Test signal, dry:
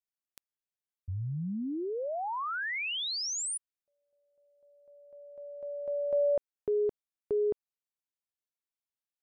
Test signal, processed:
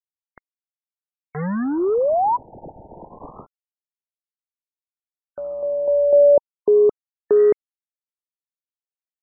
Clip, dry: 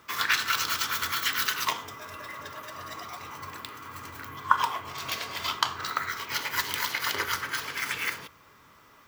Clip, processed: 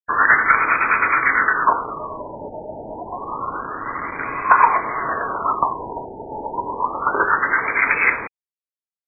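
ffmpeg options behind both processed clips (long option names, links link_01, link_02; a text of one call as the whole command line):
ffmpeg -i in.wav -af "highpass=270,acontrast=62,aresample=16000,acrusher=bits=5:mix=0:aa=0.000001,aresample=44100,aeval=exprs='0.944*sin(PI/2*2.51*val(0)/0.944)':channel_layout=same,afftfilt=real='re*lt(b*sr/1024,920*pow(2600/920,0.5+0.5*sin(2*PI*0.28*pts/sr)))':imag='im*lt(b*sr/1024,920*pow(2600/920,0.5+0.5*sin(2*PI*0.28*pts/sr)))':win_size=1024:overlap=0.75,volume=-2.5dB" out.wav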